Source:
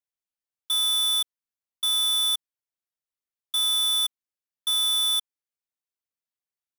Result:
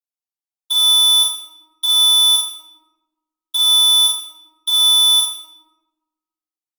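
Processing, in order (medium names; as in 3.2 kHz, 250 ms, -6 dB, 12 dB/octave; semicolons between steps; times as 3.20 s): high-pass 200 Hz 12 dB/octave; gate with hold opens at -22 dBFS; bass shelf 280 Hz -11.5 dB; peak limiter -27.5 dBFS, peak gain reduction 7 dB; sine folder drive 10 dB, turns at -12.5 dBFS; static phaser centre 340 Hz, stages 8; reverberation RT60 1.2 s, pre-delay 3 ms, DRR -8 dB; trim -4 dB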